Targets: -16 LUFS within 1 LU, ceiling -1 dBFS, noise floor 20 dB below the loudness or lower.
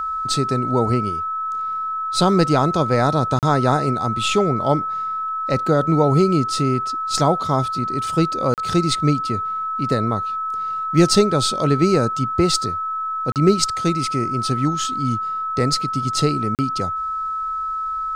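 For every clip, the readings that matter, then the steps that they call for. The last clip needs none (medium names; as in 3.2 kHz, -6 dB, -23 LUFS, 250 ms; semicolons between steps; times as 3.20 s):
dropouts 4; longest dropout 38 ms; steady tone 1.3 kHz; tone level -22 dBFS; loudness -20.0 LUFS; peak level -3.5 dBFS; loudness target -16.0 LUFS
-> interpolate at 3.39/8.54/13.32/16.55 s, 38 ms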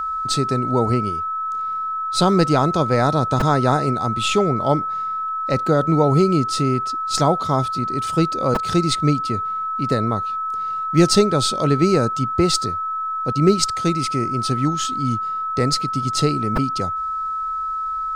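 dropouts 0; steady tone 1.3 kHz; tone level -22 dBFS
-> band-stop 1.3 kHz, Q 30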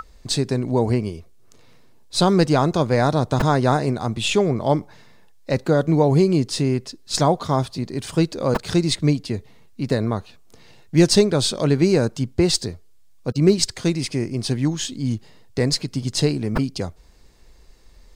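steady tone not found; loudness -21.0 LUFS; peak level -4.5 dBFS; loudness target -16.0 LUFS
-> trim +5 dB; peak limiter -1 dBFS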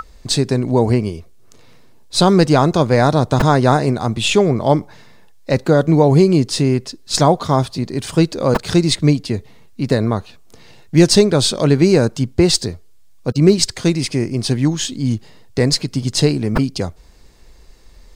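loudness -16.0 LUFS; peak level -1.0 dBFS; noise floor -43 dBFS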